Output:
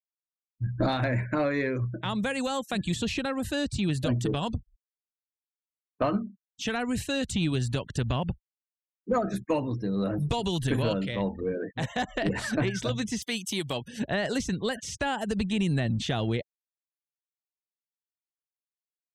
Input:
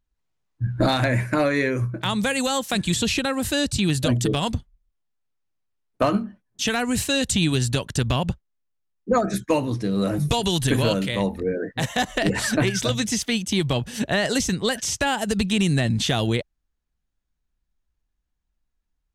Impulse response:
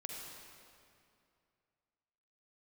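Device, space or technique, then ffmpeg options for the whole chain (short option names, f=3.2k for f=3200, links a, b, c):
parallel distortion: -filter_complex "[0:a]asettb=1/sr,asplit=3[a][b][c];[a]atrim=end=13.224[d];[b]atrim=start=13.22:end=13.88,asetpts=PTS-STARTPTS,afade=t=in:d=0.004:c=qsin,afade=t=out:st=0.656:d=0.004:c=qsin,aemphasis=mode=production:type=bsi[e];[c]atrim=start=13.876[f];[d][e]acrossfade=d=0.004:c1=hsin:c2=qsin[g];[g][f]acrossfade=d=0.004:c1=qsin:c2=hsin,afftfilt=real='re*gte(hypot(re,im),0.0126)':imag='im*gte(hypot(re,im),0.0126)':win_size=1024:overlap=0.75,asplit=2[h][i];[i]asoftclip=type=hard:threshold=-22.5dB,volume=-13.5dB[j];[h][j]amix=inputs=2:normalize=0,highshelf=f=3.8k:g=-9,volume=-6.5dB"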